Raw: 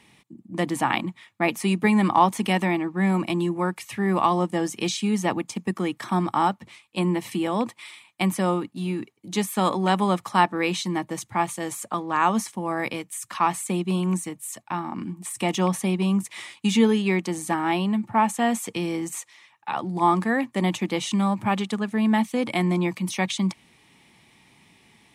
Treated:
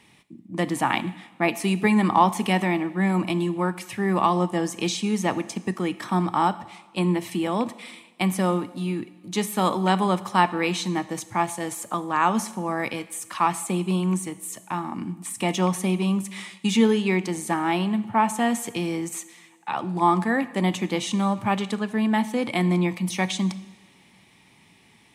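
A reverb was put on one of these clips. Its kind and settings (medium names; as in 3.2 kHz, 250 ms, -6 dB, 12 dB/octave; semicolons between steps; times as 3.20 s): two-slope reverb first 0.96 s, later 2.7 s, DRR 13 dB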